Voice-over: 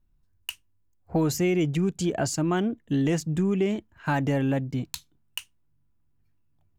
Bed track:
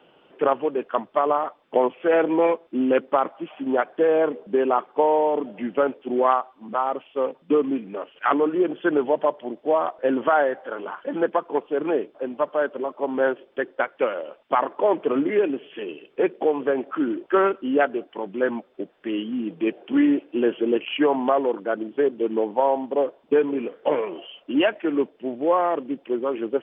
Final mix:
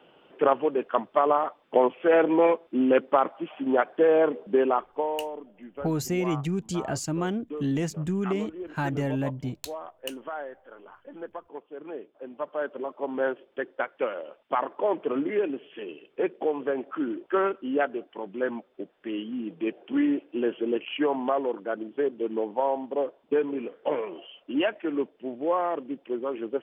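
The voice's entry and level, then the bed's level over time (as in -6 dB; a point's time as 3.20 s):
4.70 s, -3.5 dB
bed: 4.60 s -1 dB
5.46 s -16.5 dB
11.79 s -16.5 dB
12.77 s -5.5 dB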